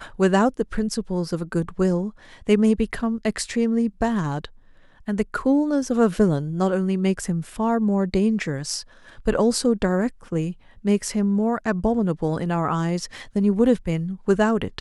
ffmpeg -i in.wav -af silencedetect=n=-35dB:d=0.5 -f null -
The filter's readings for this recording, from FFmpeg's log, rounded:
silence_start: 4.46
silence_end: 5.08 | silence_duration: 0.62